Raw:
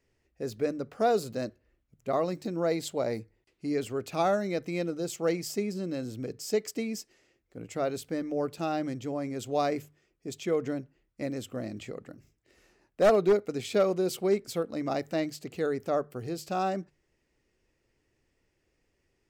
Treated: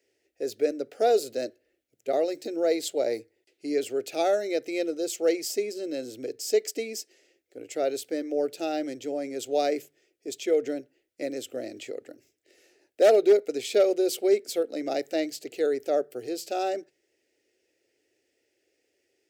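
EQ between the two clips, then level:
high-pass filter 270 Hz 12 dB per octave
phaser with its sweep stopped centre 440 Hz, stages 4
+5.5 dB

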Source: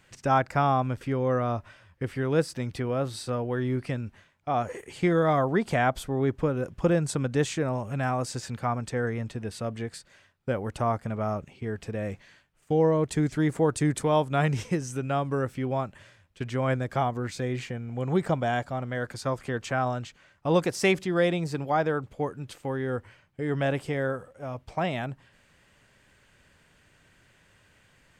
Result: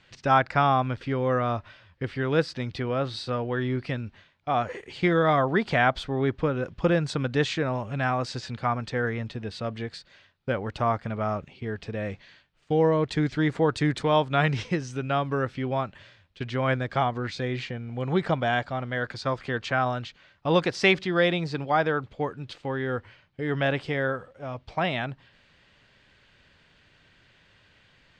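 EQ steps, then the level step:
dynamic equaliser 1,600 Hz, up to +4 dB, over −40 dBFS, Q 0.87
low-pass with resonance 4,100 Hz, resonance Q 2
0.0 dB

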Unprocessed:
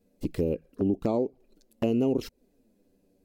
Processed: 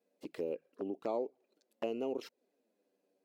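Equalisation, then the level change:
high-pass filter 510 Hz 12 dB per octave
high-shelf EQ 5,500 Hz −11.5 dB
−4.0 dB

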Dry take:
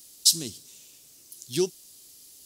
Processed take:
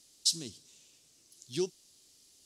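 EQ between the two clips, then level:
low-pass filter 7,500 Hz 12 dB per octave
−7.0 dB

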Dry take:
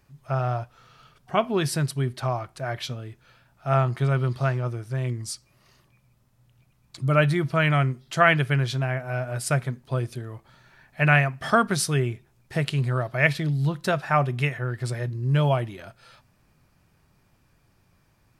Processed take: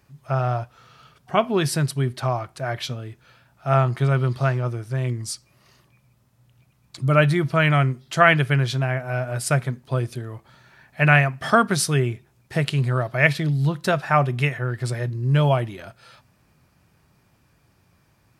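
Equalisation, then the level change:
high-pass filter 55 Hz
+3.0 dB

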